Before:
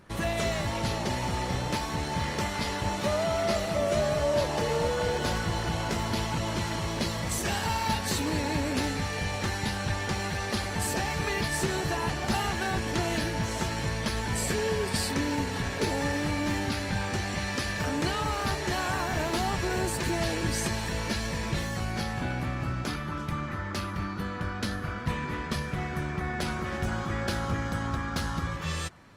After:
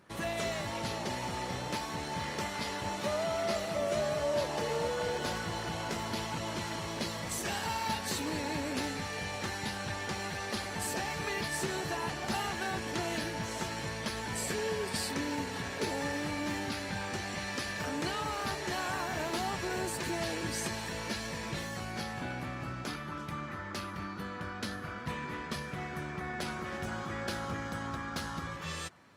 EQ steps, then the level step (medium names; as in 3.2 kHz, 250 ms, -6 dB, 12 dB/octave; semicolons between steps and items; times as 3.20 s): high-pass 180 Hz 6 dB/octave; -4.5 dB